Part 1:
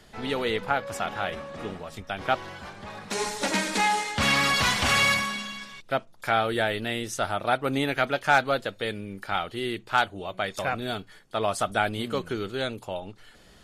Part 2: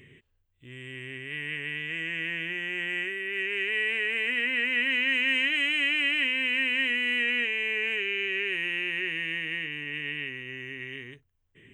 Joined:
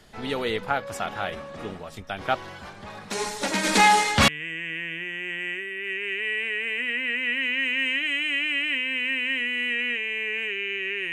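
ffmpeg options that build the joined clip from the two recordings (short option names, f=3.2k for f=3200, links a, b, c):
-filter_complex "[0:a]asplit=3[a][b][c];[a]afade=t=out:st=3.63:d=0.02[d];[b]acontrast=84,afade=t=in:st=3.63:d=0.02,afade=t=out:st=4.28:d=0.02[e];[c]afade=t=in:st=4.28:d=0.02[f];[d][e][f]amix=inputs=3:normalize=0,apad=whole_dur=11.12,atrim=end=11.12,atrim=end=4.282[g];[1:a]atrim=start=1.768:end=8.61[h];[g][h]acrossfade=d=0.004:c1=hsin:c2=hsin"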